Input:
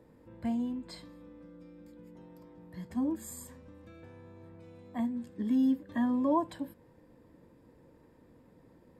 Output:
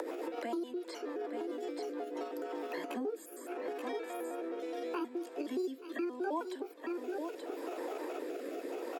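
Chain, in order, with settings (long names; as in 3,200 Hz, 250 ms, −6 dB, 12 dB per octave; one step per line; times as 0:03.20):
pitch shifter gated in a rhythm +6 semitones, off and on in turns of 105 ms
Butterworth high-pass 310 Hz 48 dB per octave
upward compression, threshold −36 dBFS
single-tap delay 879 ms −10 dB
rotating-speaker cabinet horn 7 Hz, later 0.75 Hz, at 0:01.71
multiband upward and downward compressor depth 100%
level +3 dB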